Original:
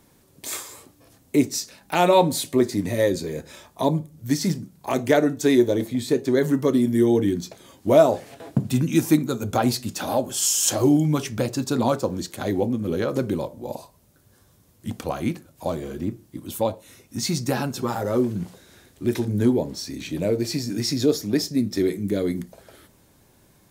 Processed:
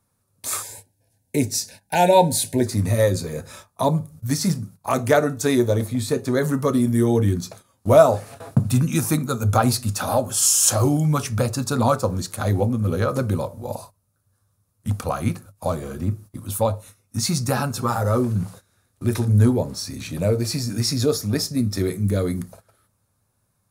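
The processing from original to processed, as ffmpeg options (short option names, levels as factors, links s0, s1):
-filter_complex "[0:a]asettb=1/sr,asplit=3[s0][s1][s2];[s0]atrim=end=0.624[s3];[s1]atrim=start=0.62:end=2.67,asetpts=PTS-STARTPTS,afade=t=in:d=0.004:c=qsin,afade=t=out:st=2.046:d=0.004:c=qsin,asuperstop=centerf=1200:order=12:qfactor=2.4[s4];[s2]atrim=start=2.666[s5];[s3][s4]acrossfade=d=0.004:c1=hsin:c2=qsin[s6];[s6][s5]acrossfade=d=0.004:c1=qsin:c2=hsin,bandreject=f=400:w=12,agate=range=0.141:threshold=0.00631:ratio=16:detection=peak,equalizer=f=100:t=o:w=0.33:g=12,equalizer=f=315:t=o:w=0.33:g=-11,equalizer=f=1250:t=o:w=0.33:g=8,equalizer=f=2000:t=o:w=0.33:g=-4,equalizer=f=3150:t=o:w=0.33:g=-6,equalizer=f=10000:t=o:w=0.33:g=8,volume=1.33"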